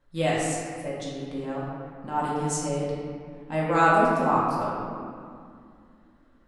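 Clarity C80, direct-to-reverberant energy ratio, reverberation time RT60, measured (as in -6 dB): 0.5 dB, -7.5 dB, 2.3 s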